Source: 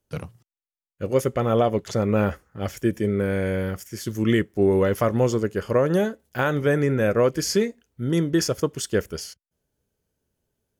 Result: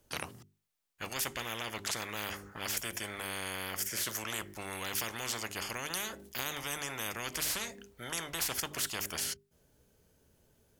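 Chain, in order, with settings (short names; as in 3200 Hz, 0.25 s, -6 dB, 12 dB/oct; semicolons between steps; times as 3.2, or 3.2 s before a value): notches 50/100/150/200/250/300/350/400 Hz; spectral compressor 10:1; gain -8 dB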